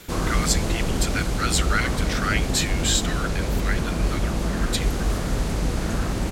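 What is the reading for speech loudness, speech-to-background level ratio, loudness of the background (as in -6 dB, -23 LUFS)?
-27.0 LUFS, -1.5 dB, -25.5 LUFS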